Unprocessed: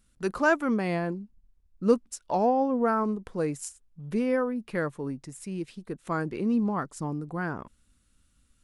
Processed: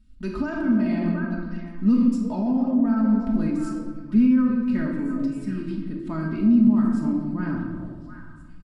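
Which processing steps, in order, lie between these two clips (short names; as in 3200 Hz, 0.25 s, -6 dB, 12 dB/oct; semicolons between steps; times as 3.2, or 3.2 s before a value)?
bell 6100 Hz -6.5 dB 0.36 oct; comb 3.2 ms, depth 72%; delay with a stepping band-pass 0.358 s, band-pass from 520 Hz, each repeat 1.4 oct, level -6 dB; reverb RT60 1.4 s, pre-delay 5 ms, DRR -0.5 dB; limiter -16 dBFS, peak gain reduction 11 dB; EQ curve 240 Hz 0 dB, 420 Hz -18 dB, 5200 Hz -11 dB, 9500 Hz -24 dB; gain +7.5 dB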